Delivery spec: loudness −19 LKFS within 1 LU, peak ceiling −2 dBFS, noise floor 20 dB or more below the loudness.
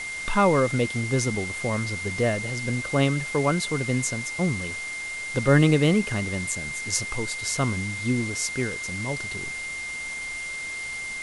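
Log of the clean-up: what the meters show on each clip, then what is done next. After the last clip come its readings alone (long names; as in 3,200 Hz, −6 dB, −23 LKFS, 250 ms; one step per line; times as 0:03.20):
interfering tone 2,100 Hz; level of the tone −31 dBFS; background noise floor −33 dBFS; target noise floor −46 dBFS; integrated loudness −25.5 LKFS; sample peak −6.0 dBFS; target loudness −19.0 LKFS
→ notch filter 2,100 Hz, Q 30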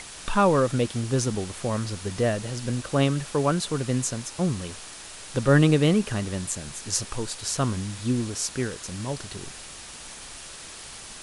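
interfering tone none found; background noise floor −42 dBFS; target noise floor −46 dBFS
→ broadband denoise 6 dB, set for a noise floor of −42 dBFS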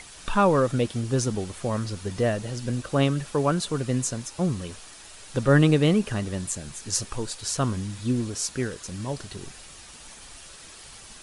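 background noise floor −46 dBFS; integrated loudness −26.0 LKFS; sample peak −6.5 dBFS; target loudness −19.0 LKFS
→ level +7 dB
brickwall limiter −2 dBFS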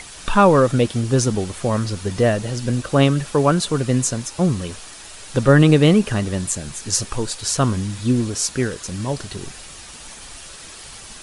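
integrated loudness −19.0 LKFS; sample peak −2.0 dBFS; background noise floor −39 dBFS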